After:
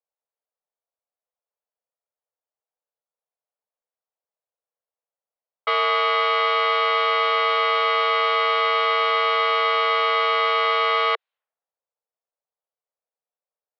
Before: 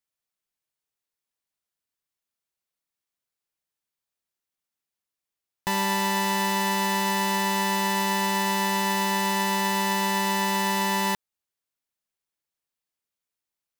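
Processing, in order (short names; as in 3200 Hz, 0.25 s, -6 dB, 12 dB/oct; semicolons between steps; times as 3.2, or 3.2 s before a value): added harmonics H 5 -21 dB, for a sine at -15 dBFS; mistuned SSB +260 Hz 200–3600 Hz; low-pass opened by the level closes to 640 Hz, open at -28 dBFS; gain +4.5 dB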